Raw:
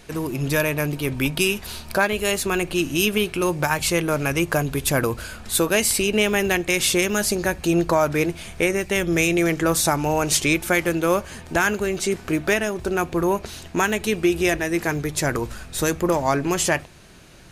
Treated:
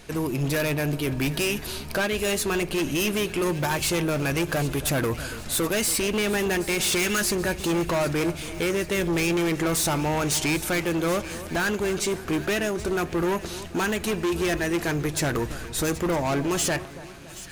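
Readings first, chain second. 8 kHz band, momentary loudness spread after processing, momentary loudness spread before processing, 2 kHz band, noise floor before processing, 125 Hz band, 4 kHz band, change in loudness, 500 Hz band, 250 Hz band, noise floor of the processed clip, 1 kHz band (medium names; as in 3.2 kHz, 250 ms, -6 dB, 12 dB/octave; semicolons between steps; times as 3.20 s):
-3.0 dB, 5 LU, 6 LU, -4.5 dB, -42 dBFS, -1.5 dB, -2.5 dB, -3.5 dB, -4.0 dB, -3.0 dB, -38 dBFS, -4.5 dB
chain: time-frequency box 6.93–7.21 s, 1.2–12 kHz +8 dB; companded quantiser 8-bit; hard clipper -21.5 dBFS, distortion -7 dB; two-band feedback delay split 1.6 kHz, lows 281 ms, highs 775 ms, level -15 dB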